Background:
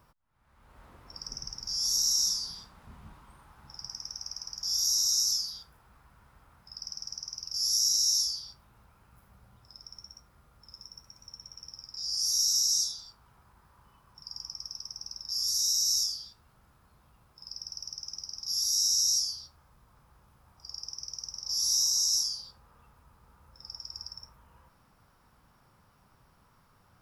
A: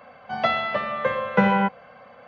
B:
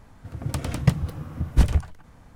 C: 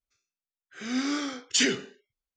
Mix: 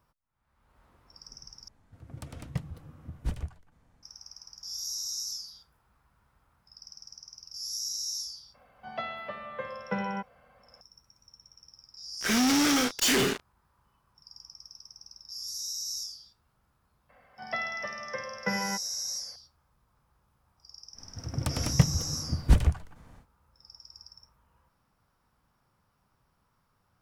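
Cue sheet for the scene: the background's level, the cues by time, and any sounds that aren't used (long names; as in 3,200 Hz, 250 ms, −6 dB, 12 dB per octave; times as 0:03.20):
background −8.5 dB
0:01.68: overwrite with B −14.5 dB
0:08.54: mix in A −13.5 dB
0:11.48: mix in C −9.5 dB + fuzz pedal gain 47 dB, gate −46 dBFS
0:17.09: mix in A −14 dB + parametric band 1,900 Hz +13 dB 0.23 octaves
0:20.92: mix in B −2.5 dB, fades 0.10 s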